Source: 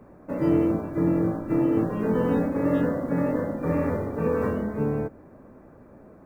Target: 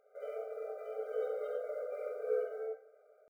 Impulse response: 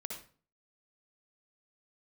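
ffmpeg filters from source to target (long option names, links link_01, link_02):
-filter_complex "[0:a]atempo=1.9[link_01];[1:a]atrim=start_sample=2205[link_02];[link_01][link_02]afir=irnorm=-1:irlink=0,afftfilt=real='re*eq(mod(floor(b*sr/1024/400),2),1)':imag='im*eq(mod(floor(b*sr/1024/400),2),1)':win_size=1024:overlap=0.75,volume=-8.5dB"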